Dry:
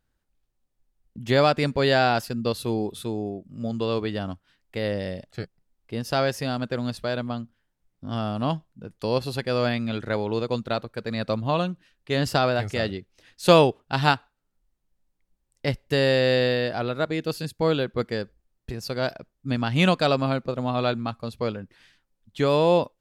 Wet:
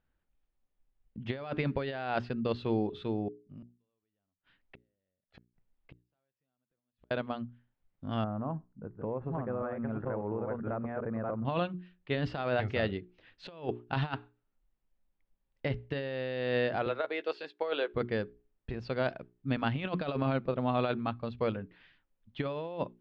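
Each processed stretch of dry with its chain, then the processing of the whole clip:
3.28–7.11 s: compression 4:1, threshold -40 dBFS + inverted gate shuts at -35 dBFS, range -41 dB
8.24–11.45 s: chunks repeated in reverse 692 ms, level -3.5 dB + inverse Chebyshev low-pass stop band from 6.2 kHz, stop band 70 dB + compression 10:1, threshold -26 dBFS
16.86–17.92 s: high-pass 390 Hz 24 dB/octave + doubling 14 ms -12 dB
whole clip: hum notches 60/120/180/240/300/360/420 Hz; compressor with a negative ratio -24 dBFS, ratio -0.5; low-pass 3.3 kHz 24 dB/octave; trim -6 dB

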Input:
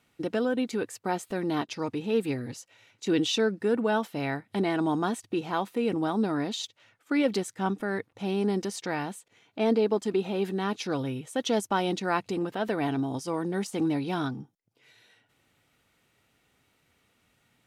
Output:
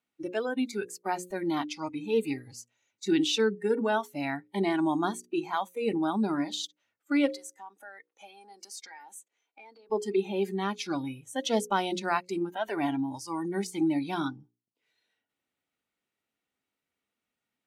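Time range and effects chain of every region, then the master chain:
7.27–9.90 s: high-pass 450 Hz + compression 4:1, threshold -38 dBFS
whole clip: spectral noise reduction 18 dB; resonant low shelf 170 Hz -6.5 dB, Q 1.5; hum notches 60/120/180/240/300/360/420/480/540 Hz

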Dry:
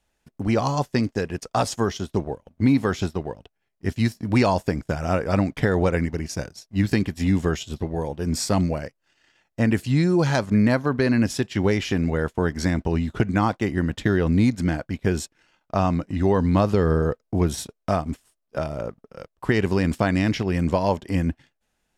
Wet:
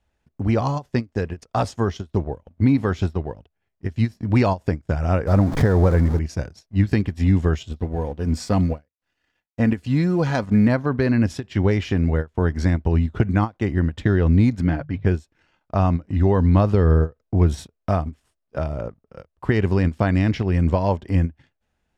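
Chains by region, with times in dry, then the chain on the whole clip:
5.27–6.19 s: jump at every zero crossing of -26.5 dBFS + peaking EQ 2.7 kHz -11 dB 0.91 oct + swell ahead of each attack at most 100 dB/s
7.71–10.68 s: companding laws mixed up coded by A + comb 4.1 ms, depth 31%
14.61–15.06 s: low-pass 4.2 kHz + hum notches 50/100/150 Hz + comb 7.1 ms, depth 44%
whole clip: low-pass 2.8 kHz 6 dB/octave; peaking EQ 77 Hz +9 dB 1.1 oct; endings held to a fixed fall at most 390 dB/s

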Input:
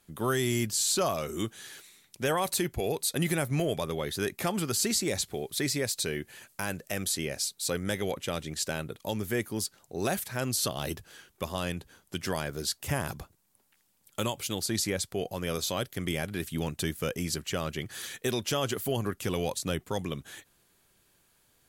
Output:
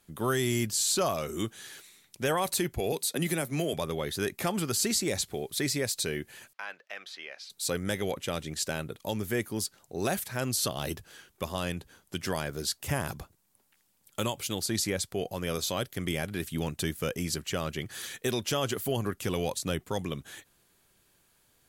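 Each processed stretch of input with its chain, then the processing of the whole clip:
2.92–3.73 s: high-pass 160 Hz 24 dB/octave + peaking EQ 1.1 kHz -3 dB 2.4 oct + three bands compressed up and down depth 40%
6.53–7.50 s: high-pass 1 kHz + distance through air 270 m
whole clip: none

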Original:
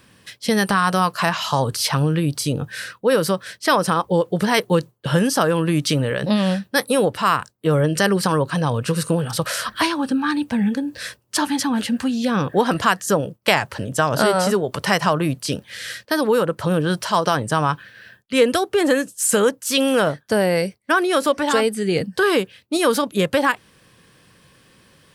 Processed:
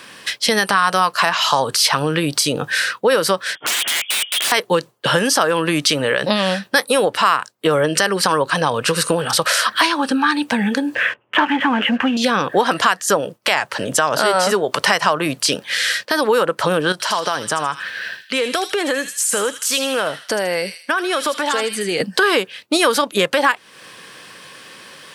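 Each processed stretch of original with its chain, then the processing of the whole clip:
3.55–4.52 s: frequency inversion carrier 3.4 kHz + compression 2.5:1, threshold -27 dBFS + integer overflow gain 26.5 dB
10.95–12.17 s: steep low-pass 3.1 kHz 72 dB/octave + waveshaping leveller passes 1
16.92–22.00 s: compression 2:1, threshold -35 dBFS + feedback echo behind a high-pass 79 ms, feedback 39%, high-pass 2.7 kHz, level -4.5 dB
whole clip: frequency weighting A; compression 2.5:1, threshold -32 dBFS; loudness maximiser +16 dB; trim -1 dB

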